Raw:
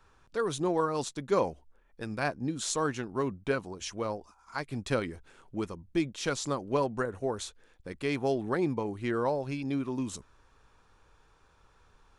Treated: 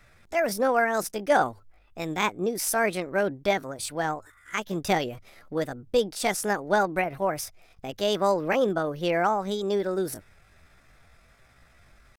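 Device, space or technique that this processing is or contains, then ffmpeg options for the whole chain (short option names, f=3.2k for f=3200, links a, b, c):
chipmunk voice: -af "asetrate=64194,aresample=44100,atempo=0.686977,volume=5.5dB"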